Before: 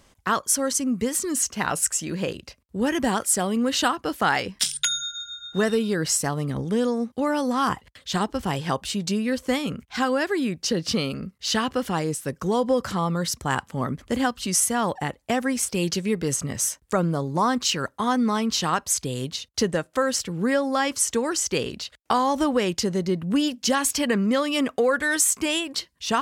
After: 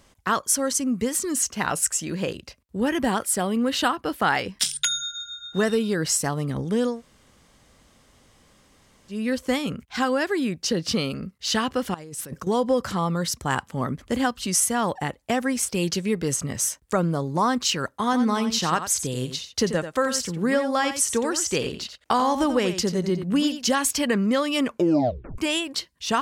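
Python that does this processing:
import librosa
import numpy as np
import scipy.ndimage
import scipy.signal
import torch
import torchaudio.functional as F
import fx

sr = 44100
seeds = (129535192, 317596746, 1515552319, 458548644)

y = fx.peak_eq(x, sr, hz=6600.0, db=-6.0, octaves=0.77, at=(2.8, 4.46))
y = fx.over_compress(y, sr, threshold_db=-37.0, ratio=-1.0, at=(11.94, 12.47))
y = fx.echo_single(y, sr, ms=88, db=-10.0, at=(18.04, 23.72))
y = fx.edit(y, sr, fx.room_tone_fill(start_s=6.94, length_s=2.22, crossfade_s=0.16),
    fx.tape_stop(start_s=24.65, length_s=0.73), tone=tone)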